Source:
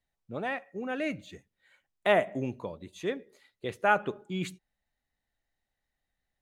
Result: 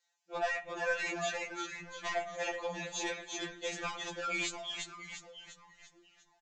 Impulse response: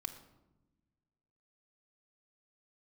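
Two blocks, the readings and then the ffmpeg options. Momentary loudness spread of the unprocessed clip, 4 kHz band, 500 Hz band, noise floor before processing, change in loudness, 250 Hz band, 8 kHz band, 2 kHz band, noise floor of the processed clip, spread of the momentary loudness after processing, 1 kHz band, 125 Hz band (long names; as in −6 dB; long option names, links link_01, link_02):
15 LU, +4.0 dB, −7.0 dB, below −85 dBFS, −5.5 dB, −9.5 dB, +12.5 dB, −2.0 dB, −72 dBFS, 12 LU, −6.0 dB, −11.5 dB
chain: -filter_complex "[0:a]highpass=560,aemphasis=mode=production:type=riaa,acompressor=threshold=-34dB:ratio=8,aresample=16000,volume=35.5dB,asoftclip=hard,volume=-35.5dB,aresample=44100,asplit=8[link_01][link_02][link_03][link_04][link_05][link_06][link_07][link_08];[link_02]adelay=348,afreqshift=-81,volume=-4dB[link_09];[link_03]adelay=696,afreqshift=-162,volume=-9.7dB[link_10];[link_04]adelay=1044,afreqshift=-243,volume=-15.4dB[link_11];[link_05]adelay=1392,afreqshift=-324,volume=-21dB[link_12];[link_06]adelay=1740,afreqshift=-405,volume=-26.7dB[link_13];[link_07]adelay=2088,afreqshift=-486,volume=-32.4dB[link_14];[link_08]adelay=2436,afreqshift=-567,volume=-38.1dB[link_15];[link_01][link_09][link_10][link_11][link_12][link_13][link_14][link_15]amix=inputs=8:normalize=0,asplit=2[link_16][link_17];[1:a]atrim=start_sample=2205,asetrate=35280,aresample=44100,lowpass=2200[link_18];[link_17][link_18]afir=irnorm=-1:irlink=0,volume=-6.5dB[link_19];[link_16][link_19]amix=inputs=2:normalize=0,afftfilt=real='re*2.83*eq(mod(b,8),0)':imag='im*2.83*eq(mod(b,8),0)':win_size=2048:overlap=0.75,volume=6.5dB"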